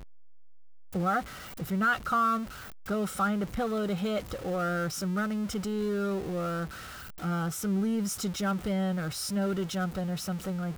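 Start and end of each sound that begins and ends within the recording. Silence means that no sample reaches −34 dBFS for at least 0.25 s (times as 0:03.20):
0:00.95–0:01.21
0:01.60–0:02.44
0:02.88–0:06.66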